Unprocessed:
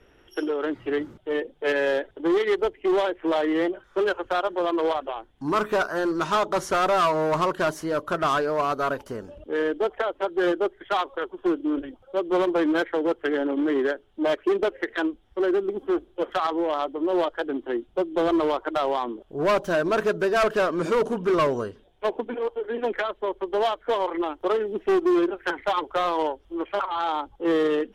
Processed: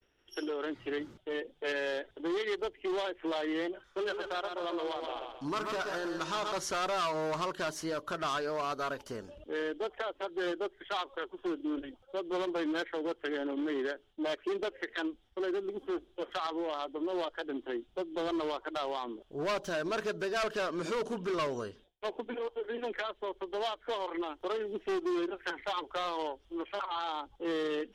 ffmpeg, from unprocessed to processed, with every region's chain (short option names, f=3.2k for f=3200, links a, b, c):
-filter_complex "[0:a]asettb=1/sr,asplit=3[a][b][c];[a]atrim=end=3.884[d];[b]atrim=start=3.88:end=6.52,asetpts=PTS-STARTPTS,afade=t=in:d=0.004:c=qsin,afade=t=out:st=2.636:d=0.004:c=qsin,bandreject=f=216.5:t=h:w=4,bandreject=f=433:t=h:w=4,bandreject=f=649.5:t=h:w=4,bandreject=f=866:t=h:w=4,bandreject=f=1.0825k:t=h:w=4,bandreject=f=1.299k:t=h:w=4,bandreject=f=1.5155k:t=h:w=4,bandreject=f=1.732k:t=h:w=4,bandreject=f=1.9485k:t=h:w=4,bandreject=f=2.165k:t=h:w=4,bandreject=f=2.3815k:t=h:w=4,aecho=1:1:130|260|390|520|650:0.447|0.188|0.0788|0.0331|0.0139,atrim=end_sample=116424[e];[c]atrim=start=6.516[f];[d][e]acrossfade=d=0.004:c1=hsin:c2=qsin[g];[g][f]acrossfade=d=0.004:c1=qsin:c2=hsin,alimiter=limit=-21dB:level=0:latency=1:release=124,equalizer=f=4.8k:w=0.56:g=9,agate=range=-33dB:threshold=-47dB:ratio=3:detection=peak,volume=-7.5dB"